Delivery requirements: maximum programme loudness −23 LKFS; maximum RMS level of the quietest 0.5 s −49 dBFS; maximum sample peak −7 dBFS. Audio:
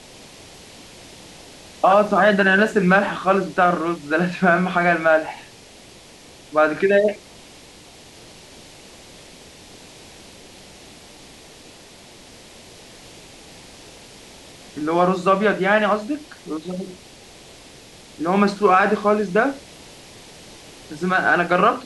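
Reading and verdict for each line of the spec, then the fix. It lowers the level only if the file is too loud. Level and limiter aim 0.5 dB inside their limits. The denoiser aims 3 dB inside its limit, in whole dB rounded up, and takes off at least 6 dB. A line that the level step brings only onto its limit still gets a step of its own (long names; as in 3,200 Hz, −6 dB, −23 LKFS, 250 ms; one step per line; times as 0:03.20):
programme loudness −18.5 LKFS: out of spec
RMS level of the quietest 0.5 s −45 dBFS: out of spec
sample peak −5.0 dBFS: out of spec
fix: level −5 dB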